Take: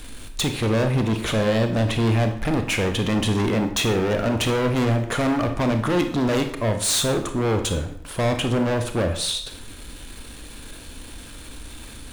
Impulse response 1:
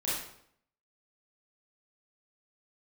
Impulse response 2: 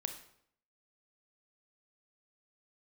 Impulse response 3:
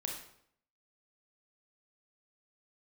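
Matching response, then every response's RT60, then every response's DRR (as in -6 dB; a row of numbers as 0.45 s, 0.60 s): 2; 0.70 s, 0.70 s, 0.70 s; -9.0 dB, 6.5 dB, 0.0 dB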